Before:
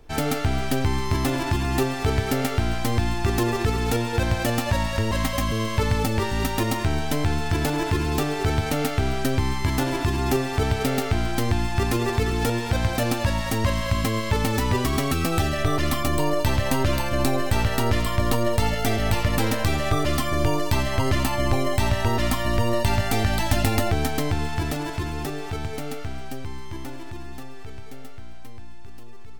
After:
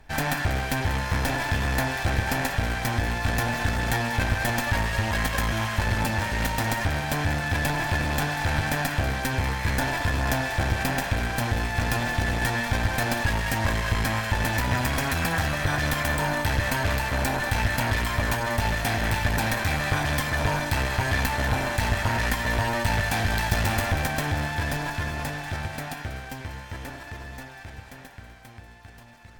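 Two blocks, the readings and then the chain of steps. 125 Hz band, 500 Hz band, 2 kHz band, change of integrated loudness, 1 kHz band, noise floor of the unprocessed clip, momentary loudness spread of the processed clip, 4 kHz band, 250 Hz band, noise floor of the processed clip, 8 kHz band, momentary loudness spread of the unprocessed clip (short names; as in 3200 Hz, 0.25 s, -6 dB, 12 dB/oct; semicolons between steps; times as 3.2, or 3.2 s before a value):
-2.5 dB, -5.5 dB, +4.5 dB, -1.5 dB, -0.5 dB, -31 dBFS, 7 LU, -1.0 dB, -5.5 dB, -44 dBFS, -1.0 dB, 8 LU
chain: minimum comb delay 1.2 ms; bell 1800 Hz +8 dB 0.72 oct; on a send: split-band echo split 790 Hz, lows 88 ms, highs 0.191 s, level -13.5 dB; on the sum: one-sided clip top -23.5 dBFS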